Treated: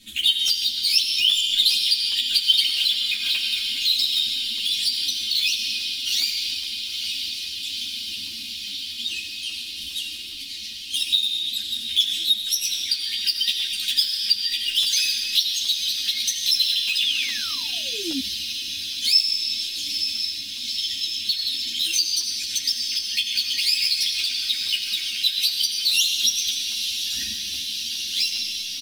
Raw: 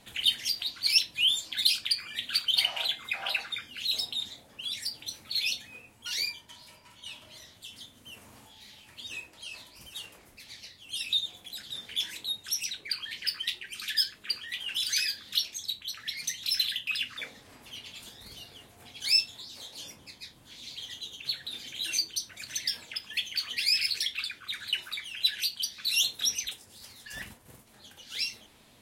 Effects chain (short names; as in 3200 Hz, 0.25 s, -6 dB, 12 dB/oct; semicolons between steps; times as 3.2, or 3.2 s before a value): in parallel at -11 dB: bit-crush 5-bit; on the sum: high shelf 8300 Hz +7 dB; comb 3.2 ms, depth 70%; diffused feedback echo 0.917 s, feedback 79%, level -13 dB; on a send at -5 dB: reverb RT60 1.7 s, pre-delay 40 ms; on the sum: compressor 2:1, threshold -29 dBFS, peak gain reduction 9 dB; painted sound fall, 17.02–18.2, 250–3800 Hz -32 dBFS; EQ curve 110 Hz 0 dB, 180 Hz +5 dB, 300 Hz +1 dB, 790 Hz -25 dB, 3300 Hz +7 dB, 14000 Hz -1 dB; crackling interface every 0.41 s, samples 64, zero, from 0.48; ensemble effect; gain +5.5 dB